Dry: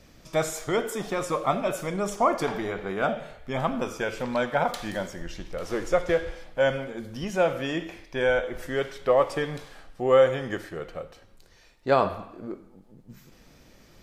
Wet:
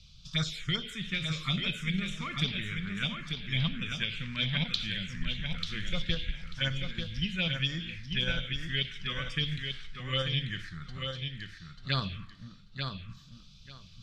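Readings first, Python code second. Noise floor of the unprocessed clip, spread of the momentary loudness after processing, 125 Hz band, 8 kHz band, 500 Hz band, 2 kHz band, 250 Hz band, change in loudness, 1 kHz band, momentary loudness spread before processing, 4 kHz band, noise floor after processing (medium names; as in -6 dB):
-55 dBFS, 13 LU, +4.0 dB, -9.5 dB, -21.0 dB, -2.5 dB, -4.5 dB, -6.0 dB, -16.5 dB, 14 LU, +9.5 dB, -53 dBFS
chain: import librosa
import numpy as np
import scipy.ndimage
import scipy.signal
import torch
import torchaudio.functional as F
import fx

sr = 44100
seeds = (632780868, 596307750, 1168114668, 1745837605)

p1 = fx.curve_eq(x, sr, hz=(170.0, 320.0, 780.0, 1200.0, 3700.0, 13000.0), db=(0, -19, -27, -11, 13, -17))
p2 = fx.env_phaser(p1, sr, low_hz=280.0, high_hz=4300.0, full_db=-23.5)
p3 = fx.level_steps(p2, sr, step_db=17)
p4 = p2 + F.gain(torch.from_numpy(p3), -1.5).numpy()
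p5 = fx.high_shelf(p4, sr, hz=4900.0, db=-7.5)
y = fx.echo_feedback(p5, sr, ms=890, feedback_pct=18, wet_db=-5.5)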